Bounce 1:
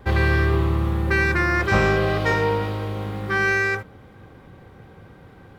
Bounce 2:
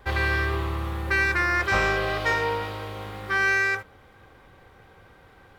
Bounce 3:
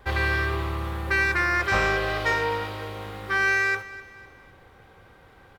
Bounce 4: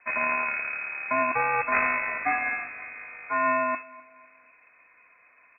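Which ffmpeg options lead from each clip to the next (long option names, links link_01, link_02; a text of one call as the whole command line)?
ffmpeg -i in.wav -af "equalizer=frequency=170:width=0.46:gain=-13" out.wav
ffmpeg -i in.wav -af "aecho=1:1:253|506|759:0.133|0.056|0.0235" out.wav
ffmpeg -i in.wav -af "aeval=exprs='0.376*(cos(1*acos(clip(val(0)/0.376,-1,1)))-cos(1*PI/2))+0.0473*(cos(4*acos(clip(val(0)/0.376,-1,1)))-cos(4*PI/2))+0.0266*(cos(7*acos(clip(val(0)/0.376,-1,1)))-cos(7*PI/2))':channel_layout=same,lowpass=frequency=2200:width_type=q:width=0.5098,lowpass=frequency=2200:width_type=q:width=0.6013,lowpass=frequency=2200:width_type=q:width=0.9,lowpass=frequency=2200:width_type=q:width=2.563,afreqshift=-2600" out.wav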